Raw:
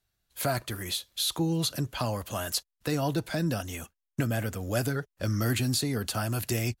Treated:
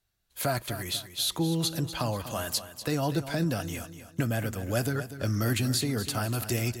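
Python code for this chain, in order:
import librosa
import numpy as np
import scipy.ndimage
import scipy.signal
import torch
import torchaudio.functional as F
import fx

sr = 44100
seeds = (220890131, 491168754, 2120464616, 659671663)

y = fx.echo_feedback(x, sr, ms=244, feedback_pct=37, wet_db=-12.0)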